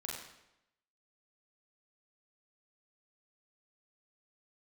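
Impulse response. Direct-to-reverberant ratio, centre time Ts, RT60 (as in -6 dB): -3.5 dB, 60 ms, 0.85 s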